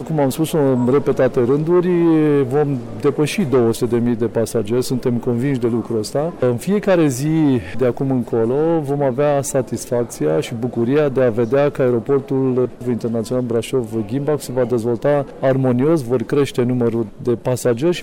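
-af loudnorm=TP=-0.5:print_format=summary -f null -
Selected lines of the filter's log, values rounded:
Input Integrated:    -17.8 LUFS
Input True Peak:      -8.4 dBTP
Input LRA:             2.1 LU
Input Threshold:     -27.8 LUFS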